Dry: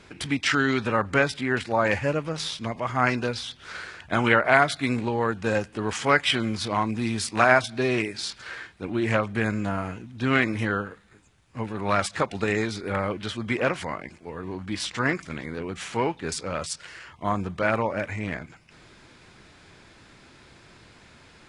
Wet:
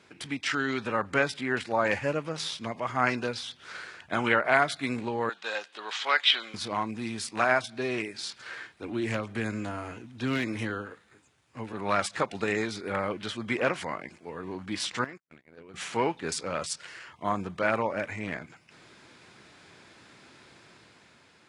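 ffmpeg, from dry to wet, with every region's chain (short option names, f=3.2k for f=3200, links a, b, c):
-filter_complex "[0:a]asettb=1/sr,asplit=3[a][b][c];[a]atrim=end=5.294[d];[b]atrim=start=5.29:end=6.54,asetpts=PTS-STARTPTS,afade=t=in:d=0.004:c=qsin,afade=t=out:st=1.246:d=0.004:c=qsin,acrossover=split=5900[e][f];[f]acompressor=threshold=-50dB:ratio=4:attack=1:release=60[g];[e][g]amix=inputs=2:normalize=0,highpass=760,lowpass=7.8k,equalizer=f=3.7k:t=o:w=0.51:g=11[h];[c]atrim=start=6.536[i];[d][h]acrossfade=d=0.004:c1=hsin:c2=qsin[j];[j][i]acrossfade=d=0.004:c1=qsin:c2=hsin,asettb=1/sr,asplit=3[k][l][m];[k]atrim=end=8.694[n];[l]atrim=start=8.69:end=11.73,asetpts=PTS-STARTPTS,afade=t=in:d=0.004:c=qsin,afade=t=out:st=3.036:d=0.004:c=qsin,acrossover=split=340|3000[o][p][q];[p]acompressor=threshold=-37dB:ratio=2:attack=3.2:release=140:knee=2.83:detection=peak[r];[o][r][q]amix=inputs=3:normalize=0,bandreject=f=190:w=5.2,aeval=exprs='clip(val(0),-1,0.119)':c=same[s];[m]atrim=start=11.726[t];[n][s]acrossfade=d=0.004:c1=hsin:c2=qsin[u];[u][t]acrossfade=d=0.004:c1=qsin:c2=hsin,asettb=1/sr,asplit=3[v][w][x];[v]atrim=end=15.044[y];[w]atrim=start=15.04:end=15.74,asetpts=PTS-STARTPTS,afade=t=in:d=0.004:c=qsin,afade=t=out:st=0.696:d=0.004:c=qsin,agate=range=-52dB:threshold=-32dB:ratio=16:release=100:detection=peak,acompressor=threshold=-46dB:ratio=2.5:attack=3.2:release=140:knee=1:detection=peak,asoftclip=type=hard:threshold=-29dB[z];[x]atrim=start=15.736[aa];[y][z]acrossfade=d=0.004:c1=hsin:c2=qsin[ab];[ab][aa]acrossfade=d=0.004:c1=qsin:c2=hsin,dynaudnorm=f=200:g=9:m=5.5dB,highpass=87,lowshelf=f=130:g=-7.5,volume=-6.5dB"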